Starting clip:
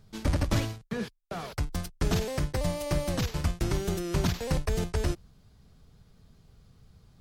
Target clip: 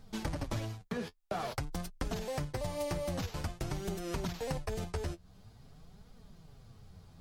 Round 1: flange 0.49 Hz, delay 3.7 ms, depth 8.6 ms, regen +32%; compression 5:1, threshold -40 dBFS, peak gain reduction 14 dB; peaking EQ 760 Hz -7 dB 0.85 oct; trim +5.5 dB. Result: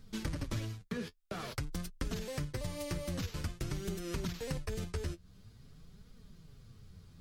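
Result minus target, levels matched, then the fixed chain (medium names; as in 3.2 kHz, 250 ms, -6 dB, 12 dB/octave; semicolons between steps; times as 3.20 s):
1 kHz band -6.0 dB
flange 0.49 Hz, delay 3.7 ms, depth 8.6 ms, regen +32%; compression 5:1, threshold -40 dBFS, peak gain reduction 14 dB; peaking EQ 760 Hz +4.5 dB 0.85 oct; trim +5.5 dB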